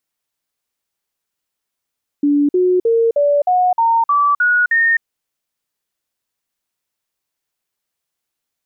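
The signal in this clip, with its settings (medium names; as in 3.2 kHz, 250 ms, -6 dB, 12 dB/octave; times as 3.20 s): stepped sine 289 Hz up, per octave 3, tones 9, 0.26 s, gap 0.05 s -10.5 dBFS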